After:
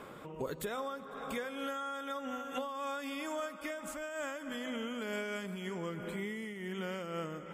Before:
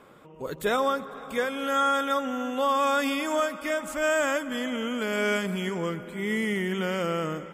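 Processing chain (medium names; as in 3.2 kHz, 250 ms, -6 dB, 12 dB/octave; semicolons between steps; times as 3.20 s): de-hum 249.7 Hz, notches 39; compression 12:1, threshold -39 dBFS, peak gain reduction 18.5 dB; random flutter of the level, depth 65%; trim +7 dB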